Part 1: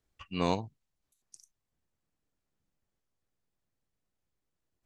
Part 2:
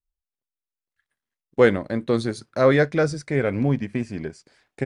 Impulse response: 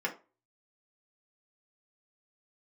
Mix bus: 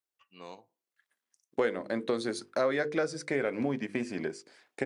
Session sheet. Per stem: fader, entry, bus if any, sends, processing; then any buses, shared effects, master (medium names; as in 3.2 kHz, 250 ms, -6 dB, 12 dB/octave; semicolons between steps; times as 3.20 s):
-17.0 dB, 0.00 s, send -15.5 dB, none
+1.0 dB, 0.00 s, no send, hum notches 50/100/150/200/250/300/350/400/450/500 Hz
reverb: on, RT60 0.30 s, pre-delay 3 ms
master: high-pass 280 Hz 12 dB/octave; compression 4:1, threshold -27 dBFS, peak gain reduction 13.5 dB